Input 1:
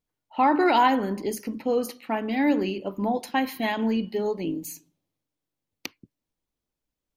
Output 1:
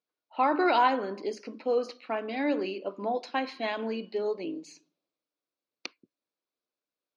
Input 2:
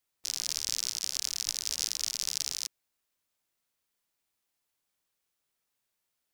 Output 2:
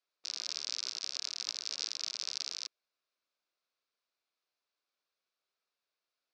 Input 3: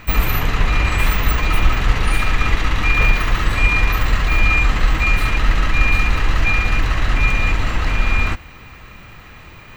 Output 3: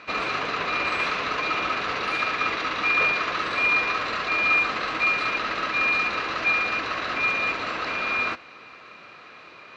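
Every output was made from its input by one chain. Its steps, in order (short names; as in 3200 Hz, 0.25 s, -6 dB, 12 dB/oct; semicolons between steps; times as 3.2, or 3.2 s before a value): speaker cabinet 450–4800 Hz, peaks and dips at 860 Hz -8 dB, 1900 Hz -8 dB, 3100 Hz -7 dB; gain +1 dB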